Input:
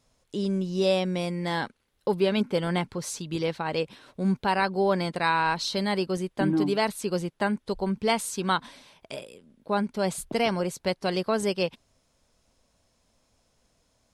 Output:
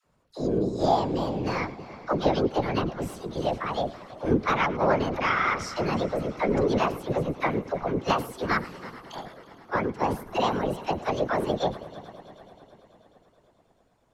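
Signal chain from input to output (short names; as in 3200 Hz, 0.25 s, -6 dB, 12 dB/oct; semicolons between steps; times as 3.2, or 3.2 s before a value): added harmonics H 2 -21 dB, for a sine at -12 dBFS; high shelf 2700 Hz -9 dB; formant shift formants +5 st; high shelf 7100 Hz -9 dB; dispersion lows, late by 58 ms, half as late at 580 Hz; on a send: multi-head echo 0.108 s, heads first and third, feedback 69%, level -19 dB; on the sum: whisperiser; gain +1 dB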